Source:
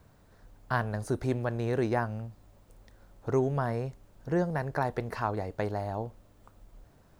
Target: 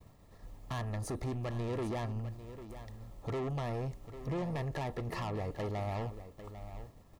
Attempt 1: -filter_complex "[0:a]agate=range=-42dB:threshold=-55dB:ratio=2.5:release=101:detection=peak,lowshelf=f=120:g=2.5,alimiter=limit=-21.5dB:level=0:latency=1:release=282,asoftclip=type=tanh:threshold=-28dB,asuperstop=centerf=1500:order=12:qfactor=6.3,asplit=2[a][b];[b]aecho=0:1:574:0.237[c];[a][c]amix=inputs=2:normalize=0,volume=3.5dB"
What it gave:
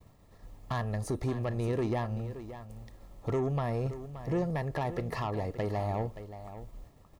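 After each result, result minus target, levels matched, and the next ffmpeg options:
echo 0.223 s early; soft clip: distortion -7 dB
-filter_complex "[0:a]agate=range=-42dB:threshold=-55dB:ratio=2.5:release=101:detection=peak,lowshelf=f=120:g=2.5,alimiter=limit=-21.5dB:level=0:latency=1:release=282,asoftclip=type=tanh:threshold=-28dB,asuperstop=centerf=1500:order=12:qfactor=6.3,asplit=2[a][b];[b]aecho=0:1:797:0.237[c];[a][c]amix=inputs=2:normalize=0,volume=3.5dB"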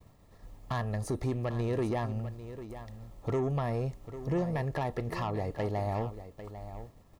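soft clip: distortion -7 dB
-filter_complex "[0:a]agate=range=-42dB:threshold=-55dB:ratio=2.5:release=101:detection=peak,lowshelf=f=120:g=2.5,alimiter=limit=-21.5dB:level=0:latency=1:release=282,asoftclip=type=tanh:threshold=-36.5dB,asuperstop=centerf=1500:order=12:qfactor=6.3,asplit=2[a][b];[b]aecho=0:1:797:0.237[c];[a][c]amix=inputs=2:normalize=0,volume=3.5dB"

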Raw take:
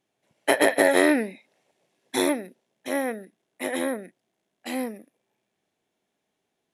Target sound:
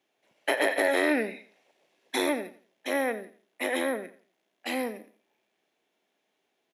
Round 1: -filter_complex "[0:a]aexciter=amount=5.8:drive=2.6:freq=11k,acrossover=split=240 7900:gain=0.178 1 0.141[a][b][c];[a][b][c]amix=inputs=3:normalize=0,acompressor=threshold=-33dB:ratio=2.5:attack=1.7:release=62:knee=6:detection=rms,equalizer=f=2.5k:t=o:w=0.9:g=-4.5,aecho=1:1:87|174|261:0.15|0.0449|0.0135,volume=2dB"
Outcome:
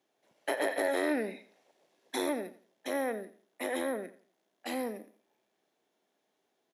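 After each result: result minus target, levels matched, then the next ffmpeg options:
compressor: peak gain reduction +4.5 dB; 2000 Hz band -3.0 dB
-filter_complex "[0:a]aexciter=amount=5.8:drive=2.6:freq=11k,acrossover=split=240 7900:gain=0.178 1 0.141[a][b][c];[a][b][c]amix=inputs=3:normalize=0,acompressor=threshold=-25.5dB:ratio=2.5:attack=1.7:release=62:knee=6:detection=rms,equalizer=f=2.5k:t=o:w=0.9:g=-4.5,aecho=1:1:87|174|261:0.15|0.0449|0.0135,volume=2dB"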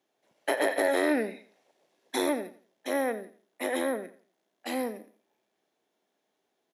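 2000 Hz band -3.0 dB
-filter_complex "[0:a]aexciter=amount=5.8:drive=2.6:freq=11k,acrossover=split=240 7900:gain=0.178 1 0.141[a][b][c];[a][b][c]amix=inputs=3:normalize=0,acompressor=threshold=-25.5dB:ratio=2.5:attack=1.7:release=62:knee=6:detection=rms,equalizer=f=2.5k:t=o:w=0.9:g=3,aecho=1:1:87|174|261:0.15|0.0449|0.0135,volume=2dB"

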